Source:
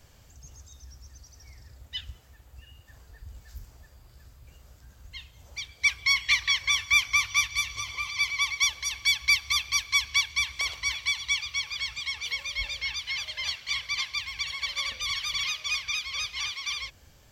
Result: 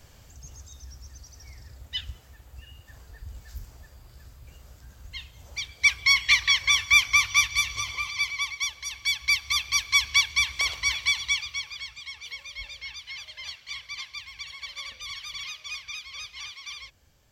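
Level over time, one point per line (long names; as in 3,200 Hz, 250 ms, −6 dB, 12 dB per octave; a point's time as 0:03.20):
0:07.85 +3.5 dB
0:08.65 −5 dB
0:10.05 +3.5 dB
0:11.17 +3.5 dB
0:11.93 −7 dB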